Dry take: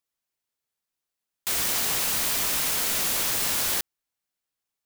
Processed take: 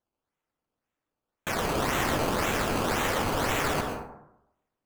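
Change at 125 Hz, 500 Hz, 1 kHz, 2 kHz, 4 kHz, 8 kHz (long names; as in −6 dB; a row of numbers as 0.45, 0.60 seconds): +10.5, +10.0, +7.5, +2.0, −6.0, −11.0 decibels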